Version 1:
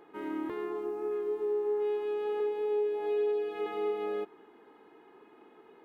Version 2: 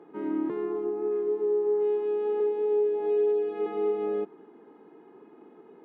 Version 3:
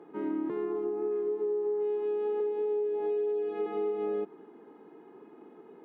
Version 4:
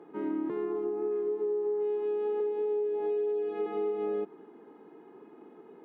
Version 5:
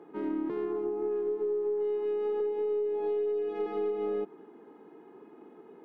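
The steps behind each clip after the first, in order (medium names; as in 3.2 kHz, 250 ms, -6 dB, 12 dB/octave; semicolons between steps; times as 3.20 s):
steep high-pass 150 Hz; tilt EQ -4 dB/octave
compression, threshold -28 dBFS, peak gain reduction 6.5 dB
no audible change
tracing distortion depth 0.041 ms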